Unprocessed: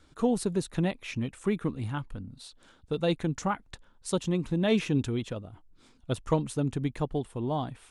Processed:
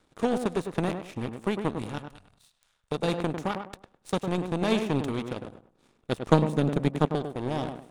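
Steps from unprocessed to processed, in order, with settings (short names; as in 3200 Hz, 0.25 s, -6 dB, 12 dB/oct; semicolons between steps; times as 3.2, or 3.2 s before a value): per-bin compression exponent 0.6; 6.31–7.14 resonant low shelf 120 Hz -9.5 dB, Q 3; power-law curve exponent 2; in parallel at -3.5 dB: soft clip -28 dBFS, distortion -6 dB; 1.98–2.92 on the sum: passive tone stack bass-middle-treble 10-0-10; on a send: tape echo 0.102 s, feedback 29%, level -5 dB, low-pass 1400 Hz; on the sum: gain +5 dB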